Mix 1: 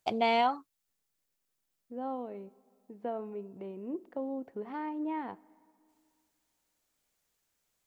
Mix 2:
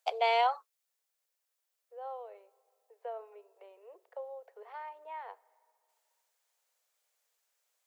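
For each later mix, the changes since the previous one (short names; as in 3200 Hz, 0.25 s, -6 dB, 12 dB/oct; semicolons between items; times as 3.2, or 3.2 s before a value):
second voice -3.5 dB; master: add steep high-pass 450 Hz 72 dB/oct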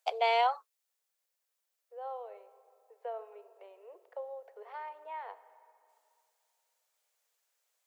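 second voice: send +10.5 dB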